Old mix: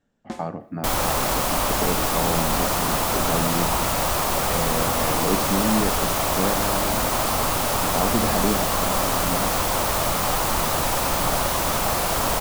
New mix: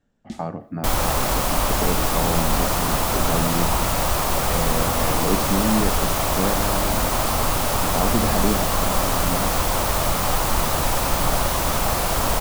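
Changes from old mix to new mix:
first sound: add Chebyshev band-stop filter 240–3,100 Hz, order 2
master: add low-shelf EQ 100 Hz +7.5 dB

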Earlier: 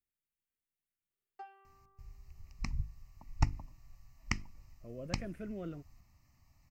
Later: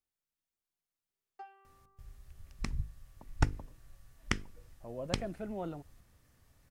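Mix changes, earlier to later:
speech: remove phaser with its sweep stopped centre 2,100 Hz, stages 4
second sound: remove phaser with its sweep stopped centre 2,300 Hz, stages 8

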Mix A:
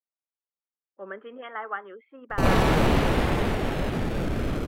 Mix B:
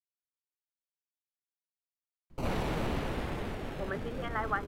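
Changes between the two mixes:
speech: entry +2.80 s
background −12.0 dB

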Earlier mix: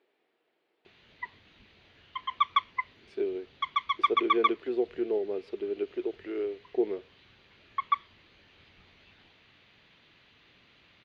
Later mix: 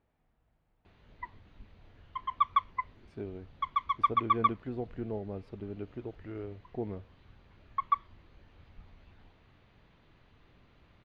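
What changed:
speech: remove high-pass with resonance 380 Hz, resonance Q 4.5
master: remove meter weighting curve D

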